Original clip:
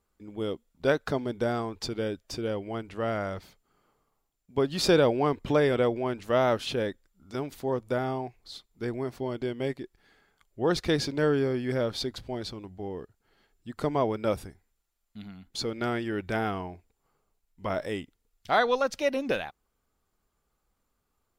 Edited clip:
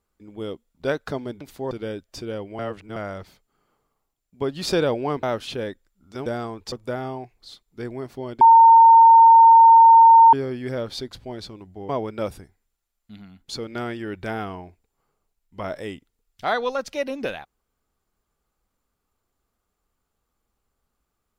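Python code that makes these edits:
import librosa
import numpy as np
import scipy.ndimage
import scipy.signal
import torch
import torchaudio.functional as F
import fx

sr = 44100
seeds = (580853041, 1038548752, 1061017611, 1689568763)

y = fx.edit(x, sr, fx.swap(start_s=1.41, length_s=0.46, other_s=7.45, other_length_s=0.3),
    fx.reverse_span(start_s=2.75, length_s=0.37),
    fx.cut(start_s=5.39, length_s=1.03),
    fx.bleep(start_s=9.44, length_s=1.92, hz=912.0, db=-7.0),
    fx.cut(start_s=12.92, length_s=1.03), tone=tone)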